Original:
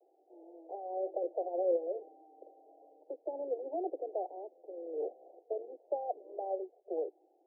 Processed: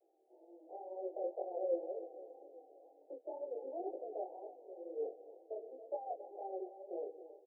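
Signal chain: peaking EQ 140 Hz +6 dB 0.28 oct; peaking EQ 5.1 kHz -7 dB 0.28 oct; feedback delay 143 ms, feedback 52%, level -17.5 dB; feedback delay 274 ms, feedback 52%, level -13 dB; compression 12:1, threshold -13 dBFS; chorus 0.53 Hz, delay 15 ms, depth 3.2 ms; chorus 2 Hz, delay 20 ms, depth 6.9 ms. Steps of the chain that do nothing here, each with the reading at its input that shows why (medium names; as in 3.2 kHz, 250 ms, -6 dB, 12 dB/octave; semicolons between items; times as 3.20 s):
peaking EQ 140 Hz: input has nothing below 250 Hz; peaking EQ 5.1 kHz: input has nothing above 910 Hz; compression, threshold -13 dBFS: peak at its input -21.0 dBFS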